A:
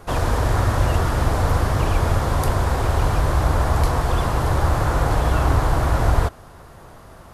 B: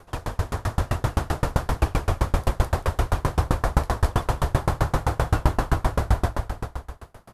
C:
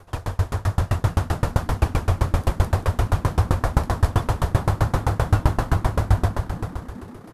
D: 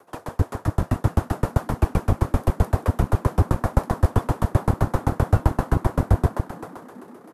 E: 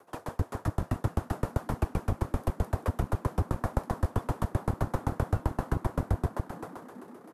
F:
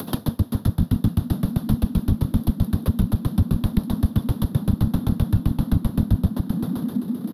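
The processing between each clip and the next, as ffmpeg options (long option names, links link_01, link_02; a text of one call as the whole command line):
ffmpeg -i in.wav -filter_complex "[0:a]asplit=2[link_01][link_02];[link_02]aecho=0:1:210|388.5|540.2|669.2|778.8:0.631|0.398|0.251|0.158|0.1[link_03];[link_01][link_03]amix=inputs=2:normalize=0,dynaudnorm=framelen=210:gausssize=9:maxgain=11.5dB,aeval=exprs='val(0)*pow(10,-32*if(lt(mod(7.7*n/s,1),2*abs(7.7)/1000),1-mod(7.7*n/s,1)/(2*abs(7.7)/1000),(mod(7.7*n/s,1)-2*abs(7.7)/1000)/(1-2*abs(7.7)/1000))/20)':channel_layout=same,volume=-1.5dB" out.wav
ffmpeg -i in.wav -filter_complex "[0:a]equalizer=frequency=97:width_type=o:width=0.43:gain=8,asplit=7[link_01][link_02][link_03][link_04][link_05][link_06][link_07];[link_02]adelay=422,afreqshift=73,volume=-19dB[link_08];[link_03]adelay=844,afreqshift=146,volume=-23dB[link_09];[link_04]adelay=1266,afreqshift=219,volume=-27dB[link_10];[link_05]adelay=1688,afreqshift=292,volume=-31dB[link_11];[link_06]adelay=2110,afreqshift=365,volume=-35.1dB[link_12];[link_07]adelay=2532,afreqshift=438,volume=-39.1dB[link_13];[link_01][link_08][link_09][link_10][link_11][link_12][link_13]amix=inputs=7:normalize=0" out.wav
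ffmpeg -i in.wav -filter_complex "[0:a]equalizer=frequency=3900:width_type=o:width=2.3:gain=-7.5,acrossover=split=200|460|2400[link_01][link_02][link_03][link_04];[link_01]acrusher=bits=2:mix=0:aa=0.5[link_05];[link_05][link_02][link_03][link_04]amix=inputs=4:normalize=0" out.wav
ffmpeg -i in.wav -af "acompressor=threshold=-20dB:ratio=3,volume=-4.5dB" out.wav
ffmpeg -i in.wav -af "aeval=exprs='0.237*sin(PI/2*3.16*val(0)/0.237)':channel_layout=same,firequalizer=gain_entry='entry(110,0);entry(220,8);entry(350,-12);entry(730,-19);entry(1500,-18);entry(2300,-19);entry(3600,0);entry(7600,-25);entry(11000,-1)':delay=0.05:min_phase=1,acompressor=mode=upward:threshold=-19dB:ratio=2.5,volume=2dB" out.wav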